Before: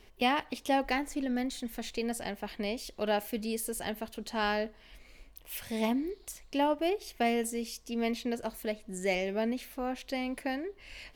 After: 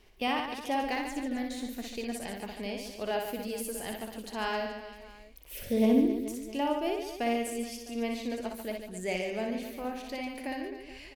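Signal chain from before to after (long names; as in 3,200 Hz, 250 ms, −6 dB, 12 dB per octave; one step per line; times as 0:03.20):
0:05.51–0:06.06: low shelf with overshoot 670 Hz +8 dB, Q 3
reverse bouncing-ball delay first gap 60 ms, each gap 1.4×, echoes 5
level −3.5 dB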